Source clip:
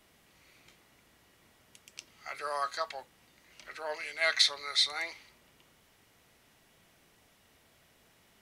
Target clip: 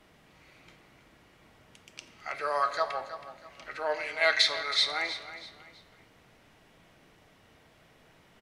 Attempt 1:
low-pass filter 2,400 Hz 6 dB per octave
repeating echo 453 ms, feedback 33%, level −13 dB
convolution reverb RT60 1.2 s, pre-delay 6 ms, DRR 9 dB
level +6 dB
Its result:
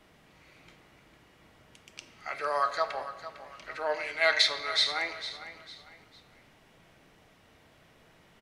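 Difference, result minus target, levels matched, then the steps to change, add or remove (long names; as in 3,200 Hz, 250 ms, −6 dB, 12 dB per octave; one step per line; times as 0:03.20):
echo 130 ms late
change: repeating echo 323 ms, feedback 33%, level −13 dB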